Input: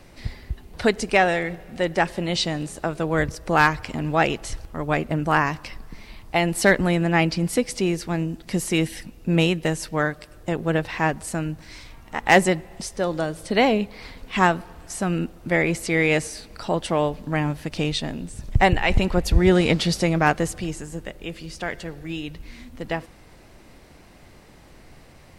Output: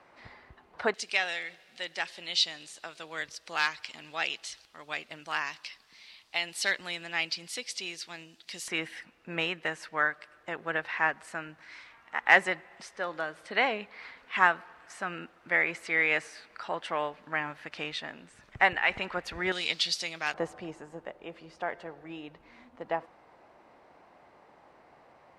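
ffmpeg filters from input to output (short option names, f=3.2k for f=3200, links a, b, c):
-af "asetnsamples=n=441:p=0,asendcmd='0.94 bandpass f 3900;8.68 bandpass f 1600;19.52 bandpass f 4000;20.34 bandpass f 870',bandpass=f=1.1k:t=q:w=1.4:csg=0"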